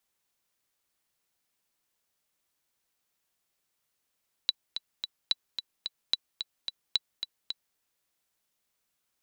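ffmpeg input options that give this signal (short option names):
-f lavfi -i "aevalsrc='pow(10,(-11-8.5*gte(mod(t,3*60/219),60/219))/20)*sin(2*PI*3950*mod(t,60/219))*exp(-6.91*mod(t,60/219)/0.03)':d=3.28:s=44100"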